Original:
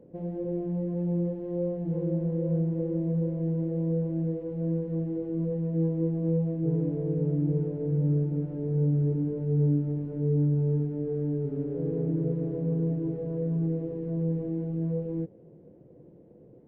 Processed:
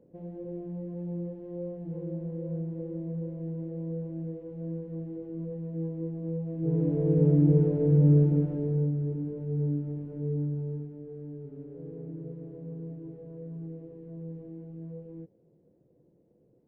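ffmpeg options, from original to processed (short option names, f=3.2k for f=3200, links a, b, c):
-af "volume=5.5dB,afade=t=in:st=6.45:d=0.78:silence=0.237137,afade=t=out:st=8.28:d=0.66:silence=0.298538,afade=t=out:st=10.27:d=0.72:silence=0.446684"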